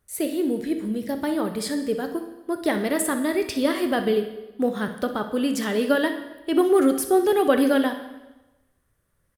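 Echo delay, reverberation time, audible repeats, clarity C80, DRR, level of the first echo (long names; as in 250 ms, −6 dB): 62 ms, 1.1 s, 1, 12.0 dB, 6.5 dB, −13.5 dB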